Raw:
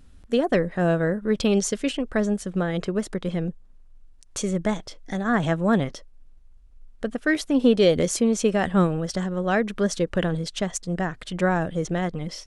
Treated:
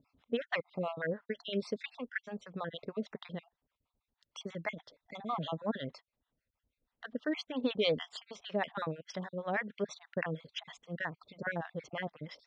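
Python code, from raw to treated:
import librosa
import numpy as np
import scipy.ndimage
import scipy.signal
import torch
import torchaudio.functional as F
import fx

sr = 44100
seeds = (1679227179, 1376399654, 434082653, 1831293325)

y = fx.spec_dropout(x, sr, seeds[0], share_pct=39)
y = fx.harmonic_tremolo(y, sr, hz=6.3, depth_pct=100, crossover_hz=680.0)
y = fx.cabinet(y, sr, low_hz=170.0, low_slope=12, high_hz=4500.0, hz=(190.0, 350.0, 950.0, 2000.0, 3600.0), db=(-6, -8, 4, 4, 4))
y = F.gain(torch.from_numpy(y), -4.0).numpy()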